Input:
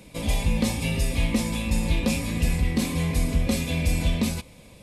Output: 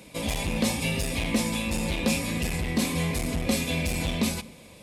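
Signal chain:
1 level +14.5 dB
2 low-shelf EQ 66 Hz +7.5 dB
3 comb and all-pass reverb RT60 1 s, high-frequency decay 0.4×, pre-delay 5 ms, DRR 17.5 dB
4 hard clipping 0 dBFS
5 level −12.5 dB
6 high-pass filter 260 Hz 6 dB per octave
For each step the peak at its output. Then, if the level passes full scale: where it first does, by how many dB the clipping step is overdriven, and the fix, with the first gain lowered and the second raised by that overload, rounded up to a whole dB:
+1.5, +6.0, +6.0, 0.0, −12.5, −11.5 dBFS
step 1, 6.0 dB
step 1 +8.5 dB, step 5 −6.5 dB

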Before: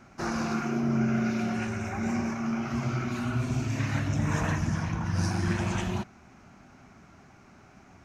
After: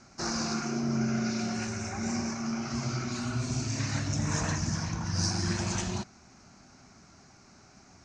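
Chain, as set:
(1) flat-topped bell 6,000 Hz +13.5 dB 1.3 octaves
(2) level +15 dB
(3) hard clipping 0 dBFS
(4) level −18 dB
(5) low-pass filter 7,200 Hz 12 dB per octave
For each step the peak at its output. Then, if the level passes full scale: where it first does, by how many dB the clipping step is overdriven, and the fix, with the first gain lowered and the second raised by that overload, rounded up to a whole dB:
−11.5, +3.5, 0.0, −18.0, −17.5 dBFS
step 2, 3.5 dB
step 2 +11 dB, step 4 −14 dB

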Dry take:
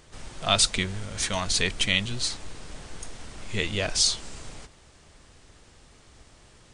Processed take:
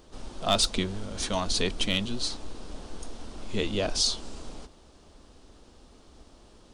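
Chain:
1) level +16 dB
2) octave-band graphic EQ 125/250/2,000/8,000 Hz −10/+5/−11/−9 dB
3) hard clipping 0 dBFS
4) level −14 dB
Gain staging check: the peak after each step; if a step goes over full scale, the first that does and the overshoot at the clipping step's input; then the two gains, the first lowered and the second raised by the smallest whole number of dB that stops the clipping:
+9.5, +6.0, 0.0, −14.0 dBFS
step 1, 6.0 dB
step 1 +10 dB, step 4 −8 dB

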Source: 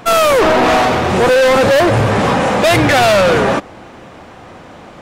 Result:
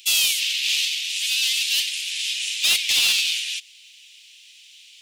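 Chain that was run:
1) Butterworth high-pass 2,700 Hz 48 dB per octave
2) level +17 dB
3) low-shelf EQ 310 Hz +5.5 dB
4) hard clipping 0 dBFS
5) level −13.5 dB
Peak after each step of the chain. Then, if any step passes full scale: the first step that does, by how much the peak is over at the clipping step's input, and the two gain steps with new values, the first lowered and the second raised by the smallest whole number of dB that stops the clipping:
−8.0, +9.0, +9.0, 0.0, −13.5 dBFS
step 2, 9.0 dB
step 2 +8 dB, step 5 −4.5 dB

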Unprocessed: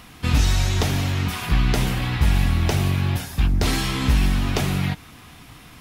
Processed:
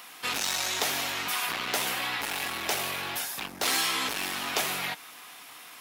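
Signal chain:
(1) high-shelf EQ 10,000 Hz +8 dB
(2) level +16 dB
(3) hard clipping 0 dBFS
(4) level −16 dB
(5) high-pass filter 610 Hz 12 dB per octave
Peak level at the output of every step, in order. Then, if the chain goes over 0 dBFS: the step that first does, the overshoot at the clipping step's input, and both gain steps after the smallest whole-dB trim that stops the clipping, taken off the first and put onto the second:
−7.0, +9.0, 0.0, −16.0, −12.5 dBFS
step 2, 9.0 dB
step 2 +7 dB, step 4 −7 dB

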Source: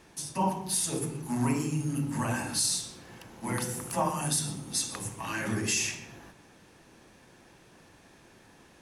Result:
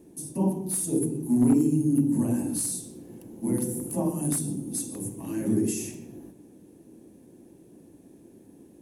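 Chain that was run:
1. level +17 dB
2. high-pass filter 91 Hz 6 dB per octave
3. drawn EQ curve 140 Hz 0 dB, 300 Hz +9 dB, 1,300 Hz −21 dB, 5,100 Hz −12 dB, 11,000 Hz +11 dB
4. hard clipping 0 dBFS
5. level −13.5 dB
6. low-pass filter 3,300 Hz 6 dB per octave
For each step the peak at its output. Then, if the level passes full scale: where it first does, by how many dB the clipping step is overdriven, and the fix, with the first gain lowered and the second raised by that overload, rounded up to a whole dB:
+1.5, +1.5, +7.0, 0.0, −13.5, −13.5 dBFS
step 1, 7.0 dB
step 1 +10 dB, step 5 −6.5 dB

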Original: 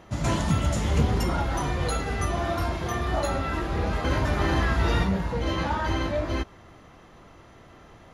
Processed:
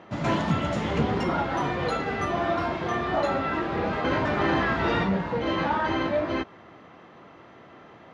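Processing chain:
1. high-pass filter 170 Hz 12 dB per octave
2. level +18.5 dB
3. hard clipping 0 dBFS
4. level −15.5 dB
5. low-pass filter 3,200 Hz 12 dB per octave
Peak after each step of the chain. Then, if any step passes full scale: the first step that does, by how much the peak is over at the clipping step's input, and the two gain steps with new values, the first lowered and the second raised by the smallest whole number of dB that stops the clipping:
−13.5, +5.0, 0.0, −15.5, −15.0 dBFS
step 2, 5.0 dB
step 2 +13.5 dB, step 4 −10.5 dB

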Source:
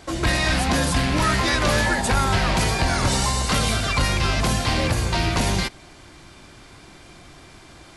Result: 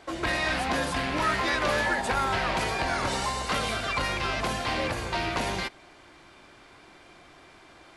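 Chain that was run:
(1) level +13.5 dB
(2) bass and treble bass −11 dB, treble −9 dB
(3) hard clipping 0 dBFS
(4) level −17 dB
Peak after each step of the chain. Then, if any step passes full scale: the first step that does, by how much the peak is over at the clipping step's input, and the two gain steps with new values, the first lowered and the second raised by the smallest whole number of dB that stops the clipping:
+4.5, +4.0, 0.0, −17.0 dBFS
step 1, 4.0 dB
step 1 +9.5 dB, step 4 −13 dB

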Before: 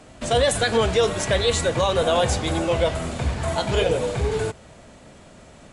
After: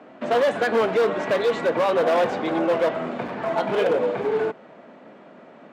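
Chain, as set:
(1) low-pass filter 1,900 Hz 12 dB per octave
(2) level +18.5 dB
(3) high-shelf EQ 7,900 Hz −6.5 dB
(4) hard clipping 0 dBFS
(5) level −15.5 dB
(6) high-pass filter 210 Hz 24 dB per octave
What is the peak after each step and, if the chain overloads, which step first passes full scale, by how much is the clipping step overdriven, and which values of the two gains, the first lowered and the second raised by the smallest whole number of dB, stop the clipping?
−9.5, +9.0, +9.0, 0.0, −15.5, −10.0 dBFS
step 2, 9.0 dB
step 2 +9.5 dB, step 5 −6.5 dB

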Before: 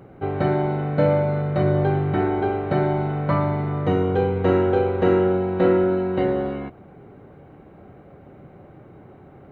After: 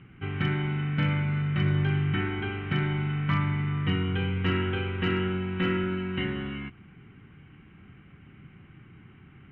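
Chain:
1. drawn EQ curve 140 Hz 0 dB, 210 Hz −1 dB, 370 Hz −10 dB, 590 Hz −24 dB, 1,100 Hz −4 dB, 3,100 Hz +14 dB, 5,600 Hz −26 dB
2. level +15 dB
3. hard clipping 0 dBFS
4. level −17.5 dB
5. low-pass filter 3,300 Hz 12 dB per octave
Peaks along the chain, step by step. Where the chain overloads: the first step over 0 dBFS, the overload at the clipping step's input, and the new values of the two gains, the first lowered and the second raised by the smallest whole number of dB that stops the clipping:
−10.5, +4.5, 0.0, −17.5, −17.0 dBFS
step 2, 4.5 dB
step 2 +10 dB, step 4 −12.5 dB

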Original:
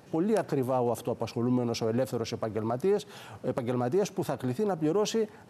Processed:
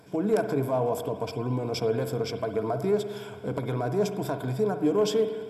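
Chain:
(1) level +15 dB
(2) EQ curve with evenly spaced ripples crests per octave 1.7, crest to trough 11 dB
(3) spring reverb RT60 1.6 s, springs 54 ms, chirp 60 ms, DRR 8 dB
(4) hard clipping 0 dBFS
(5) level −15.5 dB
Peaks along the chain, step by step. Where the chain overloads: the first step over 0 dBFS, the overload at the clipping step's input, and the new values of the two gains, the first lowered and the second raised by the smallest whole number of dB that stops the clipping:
+2.5, +3.5, +3.5, 0.0, −15.5 dBFS
step 1, 3.5 dB
step 1 +11 dB, step 5 −11.5 dB

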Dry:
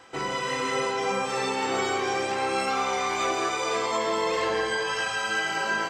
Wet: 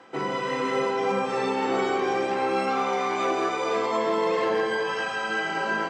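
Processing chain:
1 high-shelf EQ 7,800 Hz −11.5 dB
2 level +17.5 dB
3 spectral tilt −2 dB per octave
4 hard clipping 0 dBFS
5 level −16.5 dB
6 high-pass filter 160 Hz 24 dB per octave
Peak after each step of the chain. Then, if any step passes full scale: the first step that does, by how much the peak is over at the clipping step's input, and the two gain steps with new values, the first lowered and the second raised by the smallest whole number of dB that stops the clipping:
−14.0, +3.5, +3.5, 0.0, −16.5, −12.5 dBFS
step 2, 3.5 dB
step 2 +13.5 dB, step 5 −12.5 dB

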